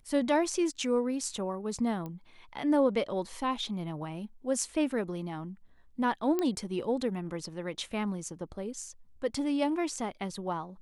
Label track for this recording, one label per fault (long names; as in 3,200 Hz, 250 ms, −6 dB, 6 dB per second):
2.060000	2.060000	click −27 dBFS
6.390000	6.390000	click −17 dBFS